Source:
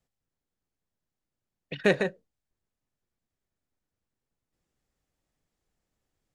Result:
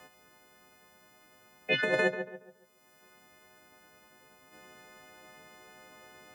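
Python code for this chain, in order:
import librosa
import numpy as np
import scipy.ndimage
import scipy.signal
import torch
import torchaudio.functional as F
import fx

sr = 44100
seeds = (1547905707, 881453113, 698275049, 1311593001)

p1 = fx.freq_snap(x, sr, grid_st=3)
p2 = fx.highpass(p1, sr, hz=370.0, slope=6)
p3 = fx.over_compress(p2, sr, threshold_db=-30.0, ratio=-1.0)
p4 = p3 + fx.echo_filtered(p3, sr, ms=140, feedback_pct=25, hz=1900.0, wet_db=-10, dry=0)
p5 = fx.band_squash(p4, sr, depth_pct=70)
y = p5 * librosa.db_to_amplitude(6.0)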